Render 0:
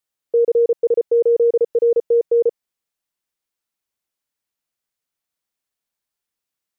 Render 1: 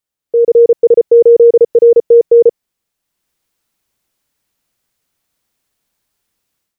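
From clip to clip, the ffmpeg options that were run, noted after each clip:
ffmpeg -i in.wav -af "lowshelf=frequency=340:gain=6.5,dynaudnorm=framelen=300:gausssize=3:maxgain=13dB" out.wav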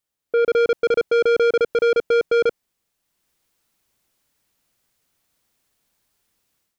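ffmpeg -i in.wav -af "asoftclip=type=tanh:threshold=-15dB" out.wav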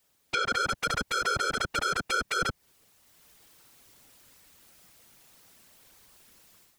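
ffmpeg -i in.wav -filter_complex "[0:a]acrossover=split=150[link_01][link_02];[link_02]acompressor=threshold=-25dB:ratio=10[link_03];[link_01][link_03]amix=inputs=2:normalize=0,aeval=exprs='0.158*sin(PI/2*7.08*val(0)/0.158)':channel_layout=same,afftfilt=real='hypot(re,im)*cos(2*PI*random(0))':imag='hypot(re,im)*sin(2*PI*random(1))':win_size=512:overlap=0.75,volume=-2dB" out.wav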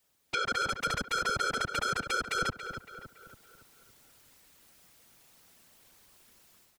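ffmpeg -i in.wav -filter_complex "[0:a]asplit=2[link_01][link_02];[link_02]adelay=281,lowpass=frequency=3300:poles=1,volume=-9dB,asplit=2[link_03][link_04];[link_04]adelay=281,lowpass=frequency=3300:poles=1,volume=0.5,asplit=2[link_05][link_06];[link_06]adelay=281,lowpass=frequency=3300:poles=1,volume=0.5,asplit=2[link_07][link_08];[link_08]adelay=281,lowpass=frequency=3300:poles=1,volume=0.5,asplit=2[link_09][link_10];[link_10]adelay=281,lowpass=frequency=3300:poles=1,volume=0.5,asplit=2[link_11][link_12];[link_12]adelay=281,lowpass=frequency=3300:poles=1,volume=0.5[link_13];[link_01][link_03][link_05][link_07][link_09][link_11][link_13]amix=inputs=7:normalize=0,volume=-3dB" out.wav

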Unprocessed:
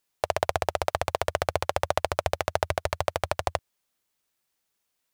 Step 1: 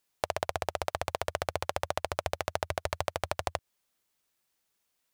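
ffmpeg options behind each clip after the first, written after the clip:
ffmpeg -i in.wav -af "acompressor=threshold=-26dB:ratio=6" out.wav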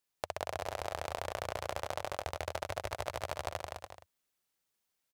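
ffmpeg -i in.wav -af "aecho=1:1:170|289|372.3|430.6|471.4:0.631|0.398|0.251|0.158|0.1,volume=-7dB" out.wav

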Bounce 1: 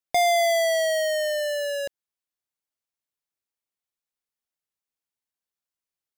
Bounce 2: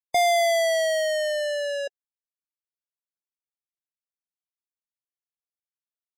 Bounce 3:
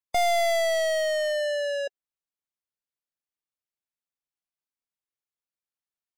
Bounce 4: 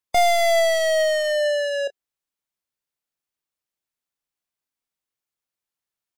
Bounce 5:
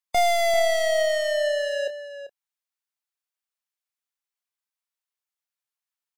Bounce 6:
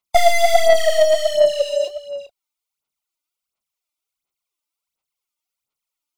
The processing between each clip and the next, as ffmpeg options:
ffmpeg -i in.wav -af "afftdn=noise_reduction=20:noise_floor=-35" out.wav
ffmpeg -i in.wav -af "highshelf=frequency=5400:gain=-5,aeval=exprs='clip(val(0),-1,0.0501)':channel_layout=same" out.wav
ffmpeg -i in.wav -filter_complex "[0:a]asplit=2[link_01][link_02];[link_02]adelay=27,volume=-14dB[link_03];[link_01][link_03]amix=inputs=2:normalize=0,volume=5dB" out.wav
ffmpeg -i in.wav -filter_complex "[0:a]acrossover=split=620|1700[link_01][link_02][link_03];[link_01]aeval=exprs='val(0)*gte(abs(val(0)),0.00355)':channel_layout=same[link_04];[link_04][link_02][link_03]amix=inputs=3:normalize=0,asplit=2[link_05][link_06];[link_06]adelay=390.7,volume=-10dB,highshelf=frequency=4000:gain=-8.79[link_07];[link_05][link_07]amix=inputs=2:normalize=0,volume=-3dB" out.wav
ffmpeg -i in.wav -af "asuperstop=centerf=1700:order=4:qfactor=3.4,aphaser=in_gain=1:out_gain=1:delay=3.4:decay=0.71:speed=1.4:type=sinusoidal,volume=2.5dB" out.wav

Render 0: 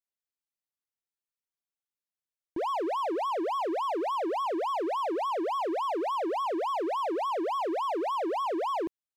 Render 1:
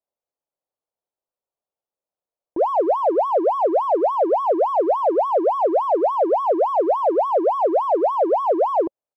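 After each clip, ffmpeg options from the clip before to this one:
ffmpeg -i in.wav -af "firequalizer=gain_entry='entry(220,0);entry(550,14);entry(1800,-10)':delay=0.05:min_phase=1,volume=2.5dB" out.wav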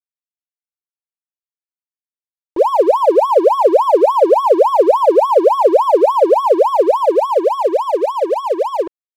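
ffmpeg -i in.wav -af "aecho=1:1:2.1:0.67,dynaudnorm=framelen=210:gausssize=21:maxgain=11.5dB,aeval=exprs='sgn(val(0))*max(abs(val(0))-0.02,0)':channel_layout=same" out.wav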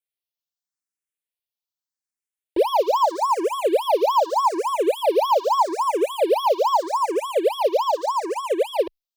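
ffmpeg -i in.wav -filter_complex "[0:a]acrossover=split=2000[link_01][link_02];[link_01]alimiter=limit=-11dB:level=0:latency=1:release=241[link_03];[link_02]acontrast=88[link_04];[link_03][link_04]amix=inputs=2:normalize=0,asplit=2[link_05][link_06];[link_06]afreqshift=0.81[link_07];[link_05][link_07]amix=inputs=2:normalize=1" out.wav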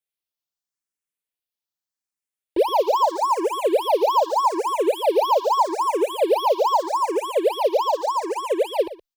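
ffmpeg -i in.wav -af "aecho=1:1:120:0.15" out.wav

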